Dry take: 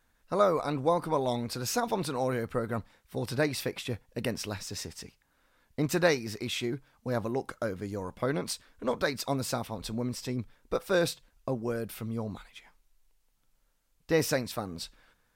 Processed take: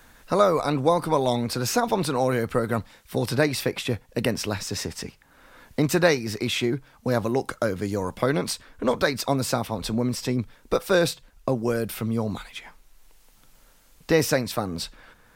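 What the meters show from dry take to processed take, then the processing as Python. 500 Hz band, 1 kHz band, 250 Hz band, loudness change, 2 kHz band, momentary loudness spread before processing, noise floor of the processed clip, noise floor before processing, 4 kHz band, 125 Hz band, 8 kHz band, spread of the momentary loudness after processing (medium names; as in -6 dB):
+6.5 dB, +6.5 dB, +7.5 dB, +6.5 dB, +6.5 dB, 11 LU, -57 dBFS, -71 dBFS, +7.0 dB, +7.0 dB, +6.0 dB, 10 LU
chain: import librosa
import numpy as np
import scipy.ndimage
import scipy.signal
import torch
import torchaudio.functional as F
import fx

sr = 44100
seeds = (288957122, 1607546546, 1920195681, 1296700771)

y = fx.band_squash(x, sr, depth_pct=40)
y = y * 10.0 ** (7.0 / 20.0)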